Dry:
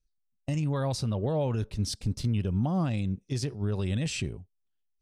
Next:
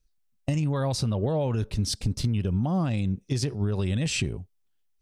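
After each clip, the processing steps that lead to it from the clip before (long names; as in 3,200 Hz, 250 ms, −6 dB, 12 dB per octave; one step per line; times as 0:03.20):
downward compressor, threshold −29 dBFS, peak gain reduction 6.5 dB
level +7 dB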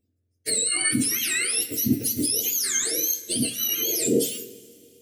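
frequency axis turned over on the octave scale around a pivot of 1,100 Hz
phaser with its sweep stopped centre 390 Hz, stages 4
coupled-rooms reverb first 0.38 s, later 2.6 s, from −18 dB, DRR 6.5 dB
level +7 dB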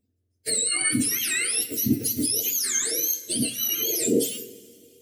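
spectral magnitudes quantised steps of 15 dB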